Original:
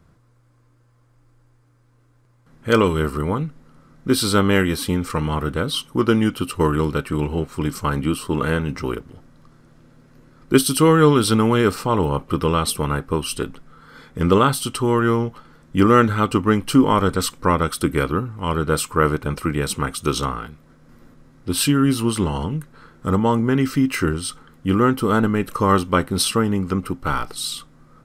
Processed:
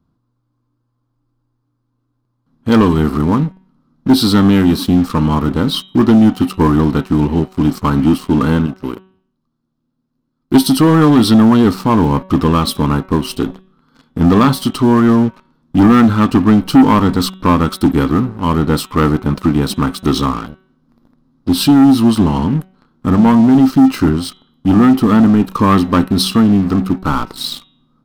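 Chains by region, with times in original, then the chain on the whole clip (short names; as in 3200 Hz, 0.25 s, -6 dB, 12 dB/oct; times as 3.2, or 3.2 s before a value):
8.66–10.67 high shelf 3200 Hz +5.5 dB + upward expander, over -36 dBFS
whole clip: graphic EQ 250/500/1000/2000/4000/8000 Hz +11/-5/+6/-11/+6/-9 dB; sample leveller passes 3; de-hum 188.4 Hz, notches 21; gain -6 dB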